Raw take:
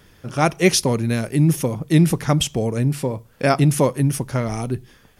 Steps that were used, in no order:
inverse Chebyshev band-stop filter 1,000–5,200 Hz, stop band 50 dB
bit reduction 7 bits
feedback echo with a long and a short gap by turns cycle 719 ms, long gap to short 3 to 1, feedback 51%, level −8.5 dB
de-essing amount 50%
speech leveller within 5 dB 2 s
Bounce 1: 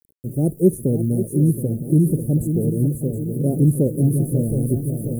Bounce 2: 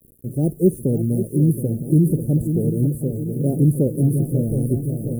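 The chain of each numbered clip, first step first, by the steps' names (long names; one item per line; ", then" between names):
feedback echo with a long and a short gap by turns, then bit reduction, then inverse Chebyshev band-stop filter, then de-essing, then speech leveller
de-essing, then feedback echo with a long and a short gap by turns, then speech leveller, then bit reduction, then inverse Chebyshev band-stop filter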